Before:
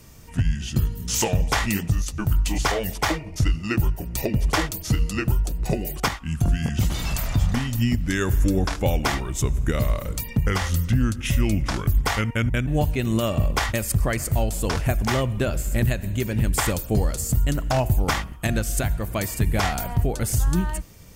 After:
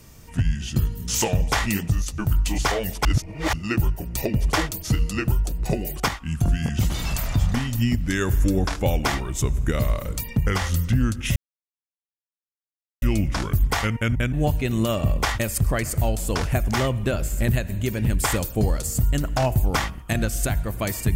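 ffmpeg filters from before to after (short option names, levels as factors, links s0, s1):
-filter_complex "[0:a]asplit=4[s0][s1][s2][s3];[s0]atrim=end=3.052[s4];[s1]atrim=start=3.048:end=3.532,asetpts=PTS-STARTPTS,areverse[s5];[s2]atrim=start=3.528:end=11.36,asetpts=PTS-STARTPTS,afade=t=out:st=7.828:d=0.004:c=hsin,apad=pad_dur=1.66[s6];[s3]atrim=start=11.36,asetpts=PTS-STARTPTS,afade=t=in:d=0.004:c=hsin[s7];[s4][s5]acrossfade=d=0.004:c1=hsin:c2=hsin[s8];[s6][s7]concat=n=2:v=0:a=1[s9];[s8][s9]acrossfade=d=0.004:c1=hsin:c2=hsin"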